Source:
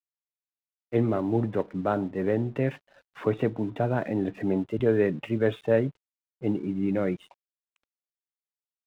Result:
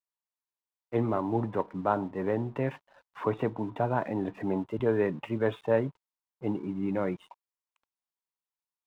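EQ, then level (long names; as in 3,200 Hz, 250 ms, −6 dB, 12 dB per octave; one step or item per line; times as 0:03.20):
parametric band 970 Hz +12 dB 0.65 octaves
−4.5 dB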